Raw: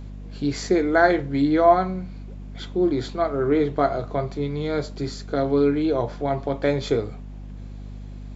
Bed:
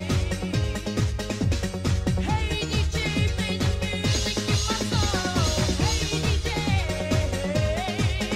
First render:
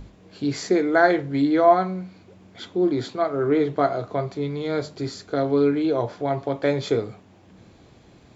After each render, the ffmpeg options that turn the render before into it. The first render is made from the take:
-af "bandreject=f=50:t=h:w=6,bandreject=f=100:t=h:w=6,bandreject=f=150:t=h:w=6,bandreject=f=200:t=h:w=6,bandreject=f=250:t=h:w=6"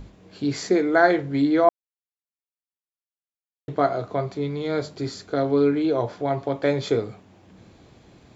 -filter_complex "[0:a]asplit=3[a][b][c];[a]atrim=end=1.69,asetpts=PTS-STARTPTS,afade=t=out:st=1.686:d=0.004:c=hsin[d];[b]atrim=start=1.69:end=3.68,asetpts=PTS-STARTPTS,volume=0[e];[c]atrim=start=3.68,asetpts=PTS-STARTPTS,afade=t=in:d=0.004:c=hsin[f];[d][e][f]concat=n=3:v=0:a=1"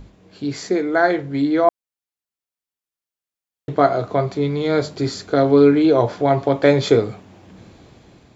-af "dynaudnorm=f=680:g=5:m=11.5dB"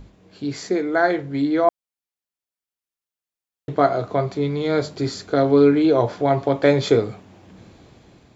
-af "volume=-2dB"

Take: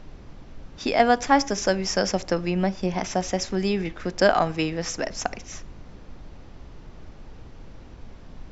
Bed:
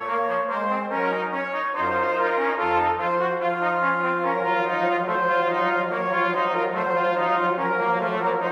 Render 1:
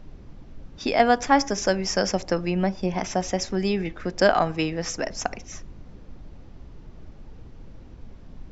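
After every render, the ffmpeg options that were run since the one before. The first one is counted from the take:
-af "afftdn=nr=6:nf=-45"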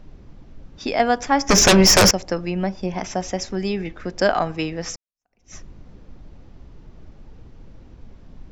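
-filter_complex "[0:a]asettb=1/sr,asplit=3[a][b][c];[a]atrim=end=1.494[d];[b]atrim=start=1.49:end=2.11,asetpts=PTS-STARTPTS,afade=t=in:d=0.004:c=qsin,afade=t=out:st=0.616:d=0.004:c=qsin,aeval=exprs='0.398*sin(PI/2*5.01*val(0)/0.398)':c=same[e];[c]atrim=start=2.106[f];[d][e]acrossfade=d=0.004:c1=hsin:c2=qsin[g];[g][f]acrossfade=d=0.004:c1=qsin:c2=hsin,asplit=2[h][i];[h]atrim=end=4.96,asetpts=PTS-STARTPTS,afade=t=out:st=4.956:d=0.004:c=hsin[j];[i]atrim=start=4.96,asetpts=PTS-STARTPTS,afade=t=in:d=0.58:c=exp[k];[j][k]concat=n=2:v=0:a=1"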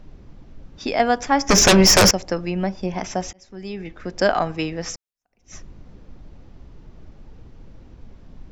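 -filter_complex "[0:a]asplit=2[a][b];[a]atrim=end=3.33,asetpts=PTS-STARTPTS,afade=t=out:st=3.326:d=0.004:c=hsin[c];[b]atrim=start=3.33,asetpts=PTS-STARTPTS,afade=t=in:d=0.89[d];[c][d]concat=n=2:v=0:a=1"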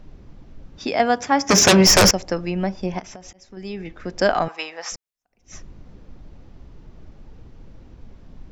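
-filter_complex "[0:a]asettb=1/sr,asplit=3[a][b][c];[a]atrim=end=0.854[d];[b]atrim=start=0.85:end=1.87,asetpts=PTS-STARTPTS,afade=t=in:d=0.004:c=qsin,afade=t=out:st=1.016:d=0.004:c=qsin,highpass=f=75:w=0.5412,highpass=f=75:w=1.3066[e];[c]atrim=start=1.866[f];[d][e]acrossfade=d=0.004:c1=hsin:c2=qsin[g];[g][f]acrossfade=d=0.004:c1=qsin:c2=hsin,asettb=1/sr,asplit=3[h][i][j];[h]atrim=end=2.994[k];[i]atrim=start=2.99:end=3.57,asetpts=PTS-STARTPTS,afade=t=in:d=0.004:c=qsin,afade=t=out:st=0.576:d=0.004:c=qsin,acompressor=threshold=-35dB:ratio=12:attack=3.2:release=140:knee=1:detection=peak[l];[j]atrim=start=3.566[m];[k][l]acrossfade=d=0.004:c1=hsin:c2=qsin[n];[n][m]acrossfade=d=0.004:c1=qsin:c2=hsin,asettb=1/sr,asplit=3[o][p][q];[o]atrim=end=4.484[r];[p]atrim=start=4.48:end=4.92,asetpts=PTS-STARTPTS,afade=t=in:d=0.004:c=qsin,afade=t=out:st=0.436:d=0.004:c=qsin,highpass=f=850:t=q:w=1.8[s];[q]atrim=start=4.916[t];[r][s]acrossfade=d=0.004:c1=hsin:c2=qsin[u];[u][t]acrossfade=d=0.004:c1=qsin:c2=hsin"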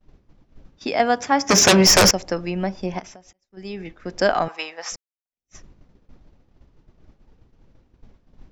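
-af "agate=range=-33dB:threshold=-33dB:ratio=3:detection=peak,lowshelf=f=190:g=-3.5"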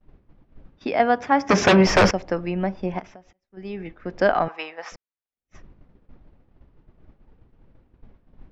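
-af "lowpass=2.6k"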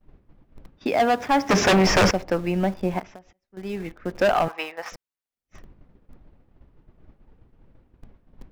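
-filter_complex "[0:a]asplit=2[a][b];[b]acrusher=bits=5:mix=0:aa=0.000001,volume=-11.5dB[c];[a][c]amix=inputs=2:normalize=0,asoftclip=type=hard:threshold=-14dB"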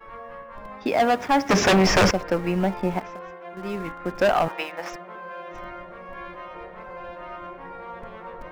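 -filter_complex "[1:a]volume=-16dB[a];[0:a][a]amix=inputs=2:normalize=0"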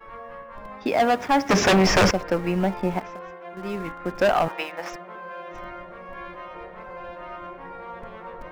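-af anull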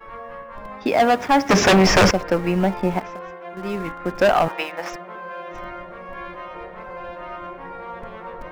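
-af "volume=3.5dB"

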